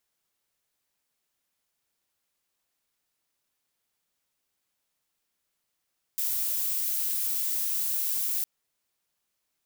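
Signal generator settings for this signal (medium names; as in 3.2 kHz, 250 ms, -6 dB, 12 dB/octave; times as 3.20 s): noise violet, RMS -28.5 dBFS 2.26 s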